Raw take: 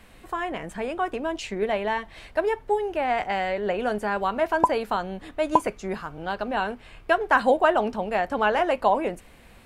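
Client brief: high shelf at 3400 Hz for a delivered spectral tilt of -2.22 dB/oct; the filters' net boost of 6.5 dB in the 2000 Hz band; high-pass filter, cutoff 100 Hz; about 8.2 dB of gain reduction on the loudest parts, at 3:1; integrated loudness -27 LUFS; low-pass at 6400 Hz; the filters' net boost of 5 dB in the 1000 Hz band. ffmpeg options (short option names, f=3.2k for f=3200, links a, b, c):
-af "highpass=100,lowpass=6.4k,equalizer=f=1k:t=o:g=5,equalizer=f=2k:t=o:g=8,highshelf=f=3.4k:g=-5,acompressor=threshold=-19dB:ratio=3,volume=-2dB"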